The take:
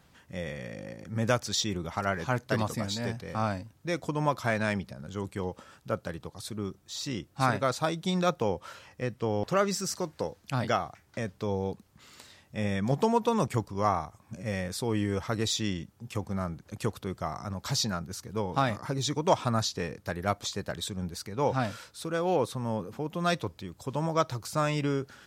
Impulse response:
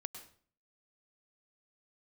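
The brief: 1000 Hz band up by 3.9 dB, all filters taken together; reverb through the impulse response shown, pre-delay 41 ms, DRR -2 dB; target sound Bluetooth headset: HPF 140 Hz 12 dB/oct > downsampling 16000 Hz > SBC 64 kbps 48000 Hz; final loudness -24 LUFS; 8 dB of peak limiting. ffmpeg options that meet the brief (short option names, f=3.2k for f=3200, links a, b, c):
-filter_complex "[0:a]equalizer=f=1k:t=o:g=5,alimiter=limit=-15dB:level=0:latency=1,asplit=2[a][b];[1:a]atrim=start_sample=2205,adelay=41[c];[b][c]afir=irnorm=-1:irlink=0,volume=4.5dB[d];[a][d]amix=inputs=2:normalize=0,highpass=140,aresample=16000,aresample=44100,volume=3.5dB" -ar 48000 -c:a sbc -b:a 64k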